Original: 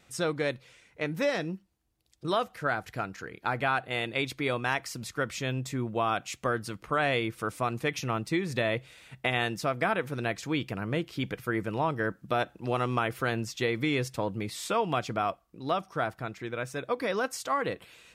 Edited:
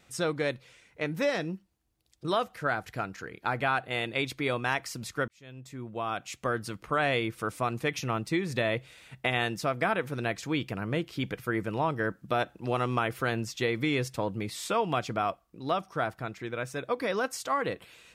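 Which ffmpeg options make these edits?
-filter_complex "[0:a]asplit=2[s0][s1];[s0]atrim=end=5.28,asetpts=PTS-STARTPTS,afade=t=out:st=5.276:d=0.004:c=hsin[s2];[s1]atrim=start=5.28,asetpts=PTS-STARTPTS,afade=t=in:d=1.36[s3];[s2][s3]concat=n=2:v=0:a=1"

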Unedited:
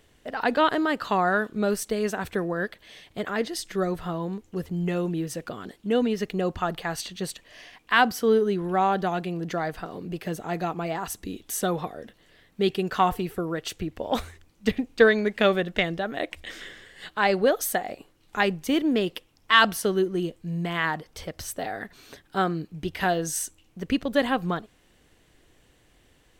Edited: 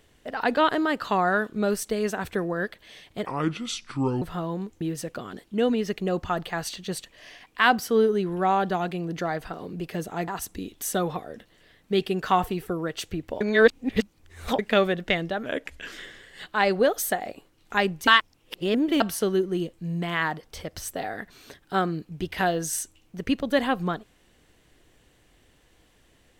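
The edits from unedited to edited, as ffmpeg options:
-filter_complex "[0:a]asplit=11[s0][s1][s2][s3][s4][s5][s6][s7][s8][s9][s10];[s0]atrim=end=3.264[s11];[s1]atrim=start=3.26:end=3.93,asetpts=PTS-STARTPTS,asetrate=30870,aresample=44100[s12];[s2]atrim=start=3.926:end=4.522[s13];[s3]atrim=start=5.128:end=10.602[s14];[s4]atrim=start=10.958:end=14.092[s15];[s5]atrim=start=14.088:end=15.272,asetpts=PTS-STARTPTS,areverse[s16];[s6]atrim=start=15.268:end=16.144[s17];[s7]atrim=start=16.14:end=16.55,asetpts=PTS-STARTPTS,asetrate=38808,aresample=44100[s18];[s8]atrim=start=16.546:end=18.702[s19];[s9]atrim=start=18.698:end=19.632,asetpts=PTS-STARTPTS,areverse[s20];[s10]atrim=start=19.628[s21];[s11][s12]acrossfade=d=0.004:c1=hsin:c2=hsin[s22];[s22][s13]acrossfade=d=0.004:c1=hsin:c2=hsin[s23];[s23][s14]acrossfade=d=0.004:c1=hsin:c2=hsin[s24];[s24][s15]acrossfade=d=0.004:c1=hsin:c2=hsin[s25];[s25][s16]acrossfade=d=0.004:c1=hsin:c2=hsin[s26];[s26][s17]acrossfade=d=0.004:c1=hsin:c2=hsin[s27];[s27][s18]acrossfade=d=0.004:c1=hsin:c2=hsin[s28];[s28][s19]acrossfade=d=0.004:c1=hsin:c2=hsin[s29];[s29][s20]acrossfade=d=0.004:c1=hsin:c2=hsin[s30];[s30][s21]acrossfade=d=0.004:c1=hsin:c2=hsin"

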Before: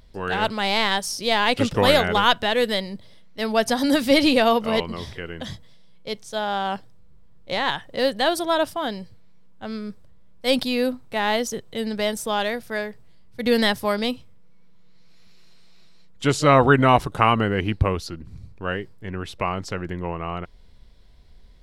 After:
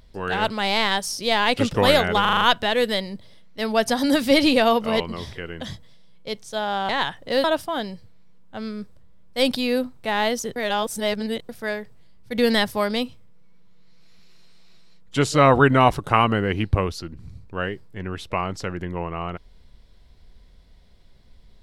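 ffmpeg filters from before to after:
-filter_complex "[0:a]asplit=10[s0][s1][s2][s3][s4][s5][s6][s7][s8][s9];[s0]atrim=end=2.252[s10];[s1]atrim=start=2.208:end=2.252[s11];[s2]atrim=start=2.208:end=2.252[s12];[s3]atrim=start=2.208:end=2.252[s13];[s4]atrim=start=2.208:end=2.252[s14];[s5]atrim=start=2.208:end=6.692[s15];[s6]atrim=start=7.558:end=8.112[s16];[s7]atrim=start=8.518:end=11.642[s17];[s8]atrim=start=11.638:end=12.572,asetpts=PTS-STARTPTS,areverse[s18];[s9]atrim=start=12.568[s19];[s10][s11]acrossfade=d=0.004:c1=hsin:c2=hsin[s20];[s20][s12]acrossfade=d=0.004:c1=hsin:c2=hsin[s21];[s21][s13]acrossfade=d=0.004:c1=hsin:c2=hsin[s22];[s22][s14]acrossfade=d=0.004:c1=hsin:c2=hsin[s23];[s23][s15]acrossfade=d=0.004:c1=hsin:c2=hsin[s24];[s24][s16]acrossfade=d=0.004:c1=hsin:c2=hsin[s25];[s25][s17]acrossfade=d=0.004:c1=hsin:c2=hsin[s26];[s26][s18]acrossfade=d=0.004:c1=hsin:c2=hsin[s27];[s27][s19]acrossfade=d=0.004:c1=hsin:c2=hsin"

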